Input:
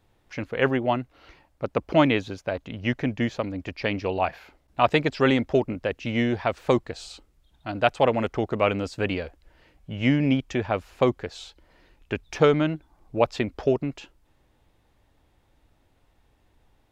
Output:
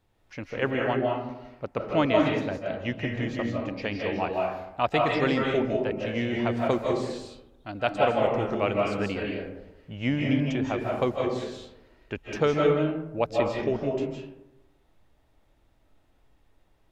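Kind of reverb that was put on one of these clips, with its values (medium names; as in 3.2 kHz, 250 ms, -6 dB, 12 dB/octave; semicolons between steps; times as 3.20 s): algorithmic reverb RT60 0.93 s, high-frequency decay 0.4×, pre-delay 120 ms, DRR -1 dB; trim -5.5 dB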